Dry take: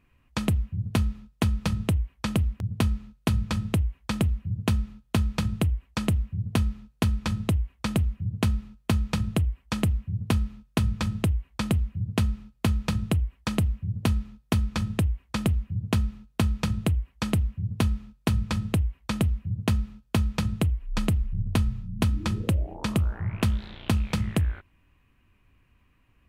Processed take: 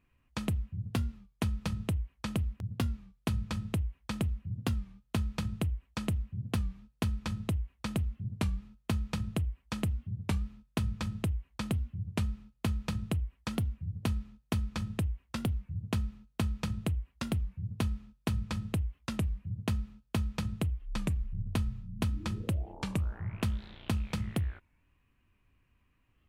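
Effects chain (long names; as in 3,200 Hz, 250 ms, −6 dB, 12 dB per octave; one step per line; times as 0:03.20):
wow of a warped record 33 1/3 rpm, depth 160 cents
level −7.5 dB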